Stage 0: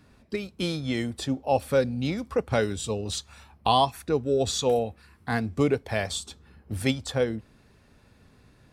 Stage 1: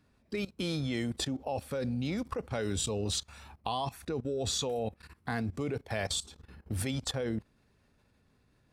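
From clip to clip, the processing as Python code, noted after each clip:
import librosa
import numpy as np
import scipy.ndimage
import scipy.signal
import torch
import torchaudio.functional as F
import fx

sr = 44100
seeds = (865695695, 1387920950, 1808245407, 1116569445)

y = fx.level_steps(x, sr, step_db=18)
y = y * 10.0 ** (3.5 / 20.0)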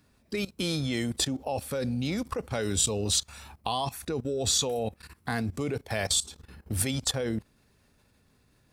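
y = fx.high_shelf(x, sr, hz=5200.0, db=9.5)
y = y * 10.0 ** (3.0 / 20.0)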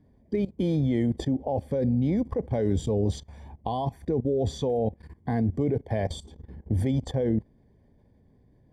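y = np.convolve(x, np.full(33, 1.0 / 33))[:len(x)]
y = y * 10.0 ** (6.5 / 20.0)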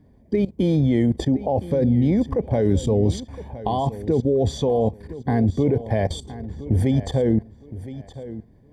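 y = fx.echo_feedback(x, sr, ms=1015, feedback_pct=25, wet_db=-15.0)
y = y * 10.0 ** (6.0 / 20.0)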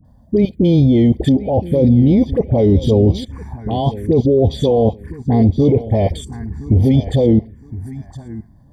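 y = fx.dispersion(x, sr, late='highs', ms=49.0, hz=1000.0)
y = fx.env_phaser(y, sr, low_hz=380.0, high_hz=1600.0, full_db=-17.0)
y = y * 10.0 ** (7.5 / 20.0)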